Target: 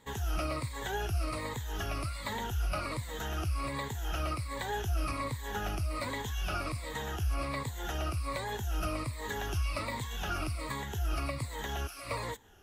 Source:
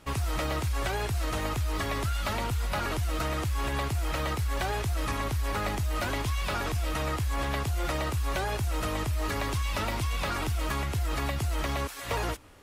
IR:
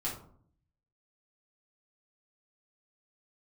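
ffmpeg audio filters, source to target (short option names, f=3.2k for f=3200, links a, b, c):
-af "afftfilt=real='re*pow(10,14/40*sin(2*PI*(1*log(max(b,1)*sr/1024/100)/log(2)-(-1.3)*(pts-256)/sr)))':imag='im*pow(10,14/40*sin(2*PI*(1*log(max(b,1)*sr/1024/100)/log(2)-(-1.3)*(pts-256)/sr)))':win_size=1024:overlap=0.75,volume=-7.5dB"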